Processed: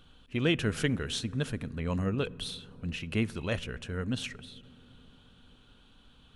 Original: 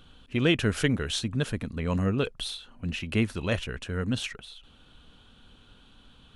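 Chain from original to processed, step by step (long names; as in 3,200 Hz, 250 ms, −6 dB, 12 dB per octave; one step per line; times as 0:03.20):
on a send: low-shelf EQ 400 Hz +9 dB + convolution reverb RT60 4.4 s, pre-delay 3 ms, DRR 21 dB
on the sum: level −4 dB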